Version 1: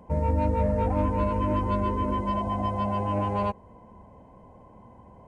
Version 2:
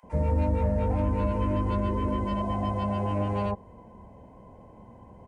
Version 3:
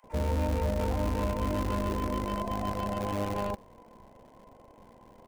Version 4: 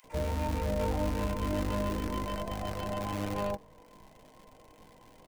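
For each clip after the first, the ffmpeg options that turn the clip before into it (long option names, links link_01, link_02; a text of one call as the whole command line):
ffmpeg -i in.wav -filter_complex "[0:a]acrossover=split=1100[link_01][link_02];[link_01]adelay=30[link_03];[link_03][link_02]amix=inputs=2:normalize=0,acrossover=split=160[link_04][link_05];[link_05]acompressor=threshold=-27dB:ratio=6[link_06];[link_04][link_06]amix=inputs=2:normalize=0,aeval=exprs='0.2*(cos(1*acos(clip(val(0)/0.2,-1,1)))-cos(1*PI/2))+0.00891*(cos(5*acos(clip(val(0)/0.2,-1,1)))-cos(5*PI/2))':channel_layout=same" out.wav
ffmpeg -i in.wav -filter_complex "[0:a]equalizer=frequency=130:width_type=o:width=0.72:gain=-9.5,acrossover=split=250|440|1400[link_01][link_02][link_03][link_04];[link_01]acrusher=bits=6:dc=4:mix=0:aa=0.000001[link_05];[link_05][link_02][link_03][link_04]amix=inputs=4:normalize=0,volume=-2.5dB" out.wav
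ffmpeg -i in.wav -filter_complex "[0:a]aecho=1:1:6.5:0.3,acrossover=split=110|1300|1900[link_01][link_02][link_03][link_04];[link_02]flanger=delay=18:depth=2.3:speed=0.38[link_05];[link_04]acompressor=mode=upward:threshold=-55dB:ratio=2.5[link_06];[link_01][link_05][link_03][link_06]amix=inputs=4:normalize=0" out.wav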